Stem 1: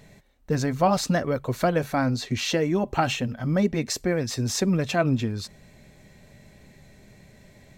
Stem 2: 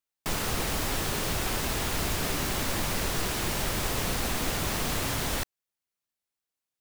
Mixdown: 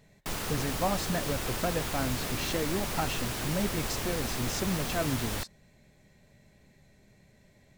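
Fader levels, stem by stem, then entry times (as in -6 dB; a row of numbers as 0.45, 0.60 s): -9.0, -4.5 dB; 0.00, 0.00 s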